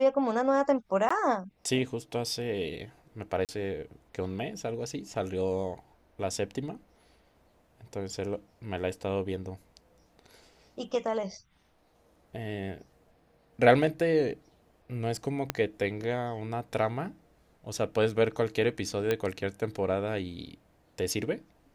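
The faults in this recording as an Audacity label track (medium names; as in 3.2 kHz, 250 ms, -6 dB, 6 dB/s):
1.090000	1.100000	dropout 15 ms
3.450000	3.490000	dropout 38 ms
15.500000	15.500000	pop -12 dBFS
19.110000	19.110000	pop -14 dBFS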